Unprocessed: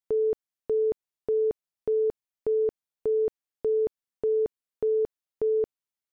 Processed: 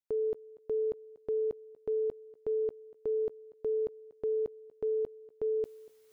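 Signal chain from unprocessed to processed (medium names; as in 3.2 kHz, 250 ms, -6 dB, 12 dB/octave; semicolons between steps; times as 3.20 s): reverse; upward compressor, threshold -44 dBFS; reverse; thinning echo 239 ms, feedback 29%, high-pass 180 Hz, level -20 dB; trim -6.5 dB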